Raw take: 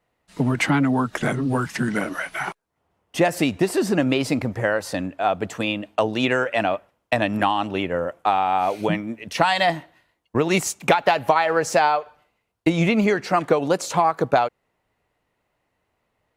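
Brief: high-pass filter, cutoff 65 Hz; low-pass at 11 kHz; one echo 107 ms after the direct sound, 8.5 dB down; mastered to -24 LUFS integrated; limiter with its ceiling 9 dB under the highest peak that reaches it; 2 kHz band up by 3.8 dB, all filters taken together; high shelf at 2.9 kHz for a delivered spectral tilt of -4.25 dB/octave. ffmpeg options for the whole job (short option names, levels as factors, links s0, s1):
-af "highpass=65,lowpass=11000,equalizer=f=2000:t=o:g=8,highshelf=f=2900:g=-8.5,alimiter=limit=0.376:level=0:latency=1,aecho=1:1:107:0.376,volume=0.794"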